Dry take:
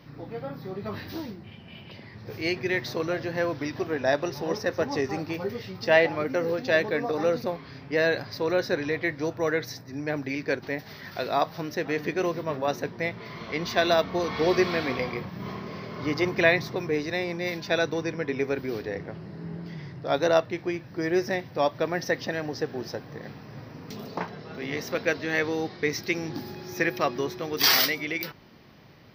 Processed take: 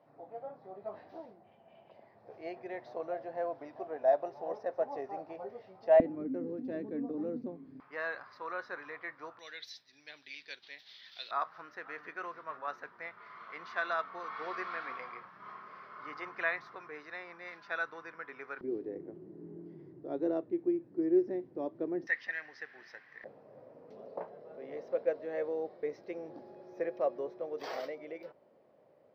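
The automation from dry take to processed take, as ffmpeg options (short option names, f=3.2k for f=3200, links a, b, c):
-af "asetnsamples=n=441:p=0,asendcmd='6 bandpass f 270;7.8 bandpass f 1200;9.39 bandpass f 3500;11.31 bandpass f 1300;18.61 bandpass f 340;22.07 bandpass f 1900;23.24 bandpass f 560',bandpass=f=680:t=q:w=4.4:csg=0"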